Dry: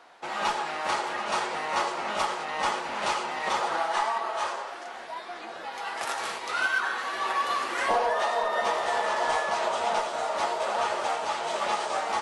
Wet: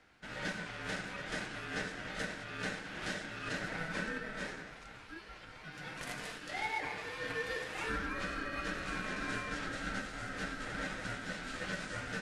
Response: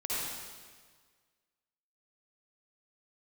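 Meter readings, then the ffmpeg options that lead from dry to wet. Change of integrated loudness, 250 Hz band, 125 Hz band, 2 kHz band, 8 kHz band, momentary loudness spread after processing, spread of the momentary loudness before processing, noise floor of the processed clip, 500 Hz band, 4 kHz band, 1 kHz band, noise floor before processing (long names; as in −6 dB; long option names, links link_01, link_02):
−11.0 dB, +0.5 dB, can't be measured, −7.0 dB, −10.5 dB, 9 LU, 9 LU, −52 dBFS, −14.0 dB, −10.0 dB, −18.0 dB, −40 dBFS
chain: -af "highpass=frequency=690:width=0.5412,highpass=frequency=690:width=1.3066,aeval=exprs='val(0)*sin(2*PI*660*n/s)':channel_layout=same,volume=-7.5dB"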